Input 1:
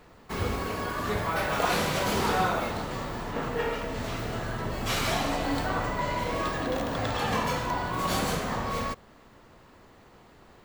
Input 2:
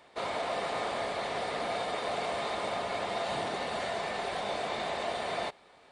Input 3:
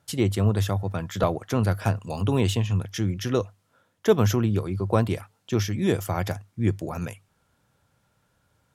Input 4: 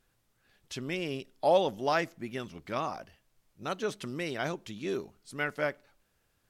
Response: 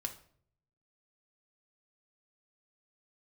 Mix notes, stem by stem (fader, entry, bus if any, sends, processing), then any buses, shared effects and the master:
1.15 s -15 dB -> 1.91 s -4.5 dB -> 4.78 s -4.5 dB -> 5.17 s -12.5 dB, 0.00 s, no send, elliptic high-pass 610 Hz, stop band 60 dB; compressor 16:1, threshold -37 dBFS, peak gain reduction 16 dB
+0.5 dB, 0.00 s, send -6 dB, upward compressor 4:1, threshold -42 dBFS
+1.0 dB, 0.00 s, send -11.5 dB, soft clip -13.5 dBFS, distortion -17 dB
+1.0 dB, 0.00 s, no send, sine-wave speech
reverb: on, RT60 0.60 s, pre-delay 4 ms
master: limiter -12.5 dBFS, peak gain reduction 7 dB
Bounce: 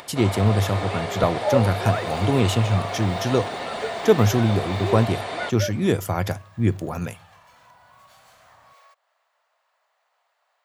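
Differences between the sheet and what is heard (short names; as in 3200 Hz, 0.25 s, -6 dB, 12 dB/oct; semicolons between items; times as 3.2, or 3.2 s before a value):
stem 3: missing soft clip -13.5 dBFS, distortion -17 dB; master: missing limiter -12.5 dBFS, peak gain reduction 7 dB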